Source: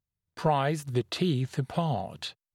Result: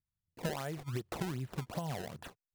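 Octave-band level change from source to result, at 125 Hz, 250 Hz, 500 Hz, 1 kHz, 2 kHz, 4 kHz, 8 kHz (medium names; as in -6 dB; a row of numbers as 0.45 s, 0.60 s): -10.0 dB, -10.5 dB, -11.0 dB, -13.5 dB, -7.0 dB, -12.0 dB, -4.0 dB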